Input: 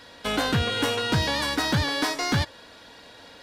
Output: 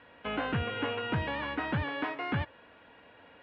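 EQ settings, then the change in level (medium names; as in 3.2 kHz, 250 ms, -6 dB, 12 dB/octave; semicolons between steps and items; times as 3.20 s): high-pass 50 Hz; Chebyshev low-pass 2.8 kHz, order 4; -6.5 dB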